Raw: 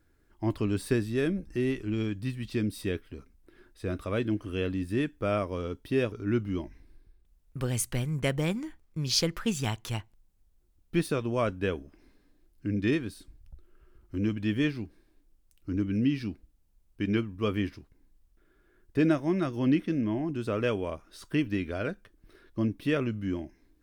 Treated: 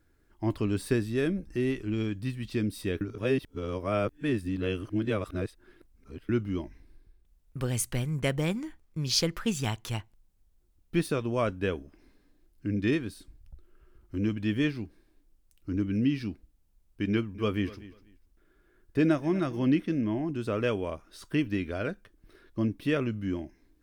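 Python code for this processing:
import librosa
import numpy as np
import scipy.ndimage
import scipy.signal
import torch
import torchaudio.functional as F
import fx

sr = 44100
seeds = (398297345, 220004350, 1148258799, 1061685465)

y = fx.echo_feedback(x, sr, ms=245, feedback_pct=20, wet_db=-18, at=(17.1, 19.64))
y = fx.edit(y, sr, fx.reverse_span(start_s=3.01, length_s=3.28), tone=tone)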